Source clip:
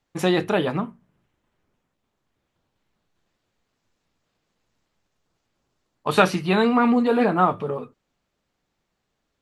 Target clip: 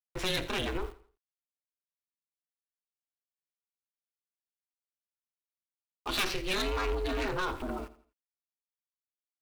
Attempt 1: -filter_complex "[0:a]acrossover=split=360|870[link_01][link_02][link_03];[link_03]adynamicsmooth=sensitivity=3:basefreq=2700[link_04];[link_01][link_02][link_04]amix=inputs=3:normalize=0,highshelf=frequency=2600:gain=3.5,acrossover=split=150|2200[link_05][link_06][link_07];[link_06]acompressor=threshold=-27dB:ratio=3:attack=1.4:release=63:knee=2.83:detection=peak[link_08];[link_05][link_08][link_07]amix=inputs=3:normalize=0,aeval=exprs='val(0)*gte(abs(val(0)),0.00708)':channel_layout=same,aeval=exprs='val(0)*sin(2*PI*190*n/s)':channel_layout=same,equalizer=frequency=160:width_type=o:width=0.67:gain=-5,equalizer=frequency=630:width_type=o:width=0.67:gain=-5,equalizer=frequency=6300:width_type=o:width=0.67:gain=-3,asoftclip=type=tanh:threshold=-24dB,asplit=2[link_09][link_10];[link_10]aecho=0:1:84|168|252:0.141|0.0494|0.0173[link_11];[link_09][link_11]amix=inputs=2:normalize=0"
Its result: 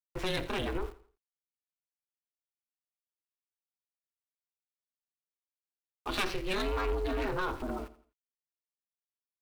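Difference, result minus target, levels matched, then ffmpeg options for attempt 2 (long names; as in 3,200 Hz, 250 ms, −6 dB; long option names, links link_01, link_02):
4,000 Hz band −3.0 dB
-filter_complex "[0:a]acrossover=split=360|870[link_01][link_02][link_03];[link_03]adynamicsmooth=sensitivity=3:basefreq=2700[link_04];[link_01][link_02][link_04]amix=inputs=3:normalize=0,highshelf=frequency=2600:gain=13,acrossover=split=150|2200[link_05][link_06][link_07];[link_06]acompressor=threshold=-27dB:ratio=3:attack=1.4:release=63:knee=2.83:detection=peak[link_08];[link_05][link_08][link_07]amix=inputs=3:normalize=0,aeval=exprs='val(0)*gte(abs(val(0)),0.00708)':channel_layout=same,aeval=exprs='val(0)*sin(2*PI*190*n/s)':channel_layout=same,equalizer=frequency=160:width_type=o:width=0.67:gain=-5,equalizer=frequency=630:width_type=o:width=0.67:gain=-5,equalizer=frequency=6300:width_type=o:width=0.67:gain=-3,asoftclip=type=tanh:threshold=-24dB,asplit=2[link_09][link_10];[link_10]aecho=0:1:84|168|252:0.141|0.0494|0.0173[link_11];[link_09][link_11]amix=inputs=2:normalize=0"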